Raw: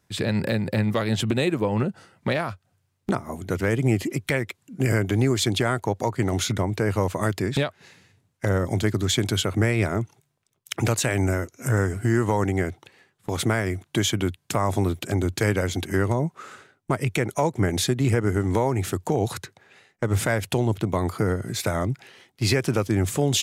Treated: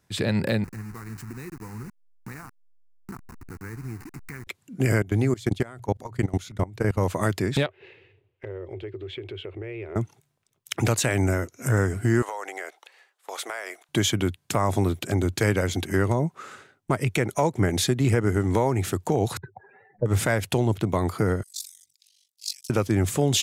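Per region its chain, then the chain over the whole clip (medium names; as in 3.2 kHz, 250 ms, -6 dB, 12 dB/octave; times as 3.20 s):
0.64–4.47 s: send-on-delta sampling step -25 dBFS + static phaser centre 1.4 kHz, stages 4 + compression 1.5:1, threshold -55 dBFS
5.02–7.04 s: bass shelf 120 Hz +6.5 dB + hum notches 60/120 Hz + level held to a coarse grid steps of 21 dB
7.66–9.96 s: FFT filter 110 Hz 0 dB, 220 Hz -20 dB, 380 Hz +12 dB, 680 Hz -2 dB, 1.4 kHz -6 dB, 2.7 kHz +5 dB, 6.6 kHz -28 dB + compression 3:1, threshold -38 dBFS
12.22–13.89 s: high-pass 540 Hz 24 dB/octave + compression 4:1, threshold -29 dBFS
19.37–20.06 s: spectral contrast enhancement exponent 2.8 + upward compressor, threshold -40 dBFS + resonant low-pass 930 Hz, resonance Q 3.9
21.43–22.70 s: inverse Chebyshev high-pass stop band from 1.3 kHz, stop band 60 dB + ring modulator 24 Hz
whole clip: none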